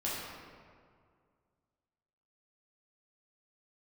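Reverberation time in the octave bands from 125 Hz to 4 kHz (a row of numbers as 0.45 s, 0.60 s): 2.4 s, 2.2 s, 2.1 s, 2.0 s, 1.6 s, 1.1 s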